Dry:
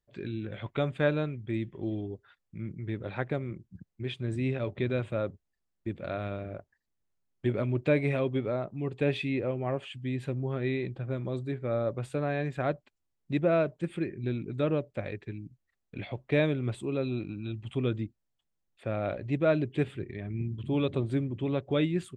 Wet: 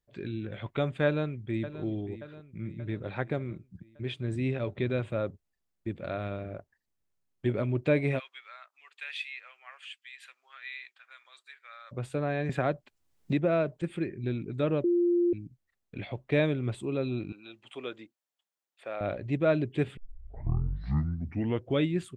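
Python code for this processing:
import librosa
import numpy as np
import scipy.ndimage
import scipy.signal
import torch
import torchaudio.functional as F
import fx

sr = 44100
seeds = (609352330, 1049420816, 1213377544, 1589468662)

y = fx.echo_throw(x, sr, start_s=1.05, length_s=0.77, ms=580, feedback_pct=55, wet_db=-13.5)
y = fx.highpass(y, sr, hz=1400.0, slope=24, at=(8.18, 11.91), fade=0.02)
y = fx.band_squash(y, sr, depth_pct=70, at=(12.49, 13.82))
y = fx.highpass(y, sr, hz=570.0, slope=12, at=(17.32, 19.01))
y = fx.edit(y, sr, fx.bleep(start_s=14.84, length_s=0.49, hz=348.0, db=-21.5),
    fx.tape_start(start_s=19.97, length_s=1.85), tone=tone)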